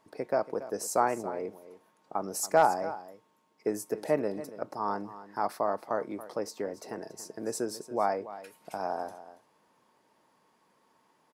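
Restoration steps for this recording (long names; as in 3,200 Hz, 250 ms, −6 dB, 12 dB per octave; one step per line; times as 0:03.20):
clipped peaks rebuilt −12 dBFS
echo removal 281 ms −15 dB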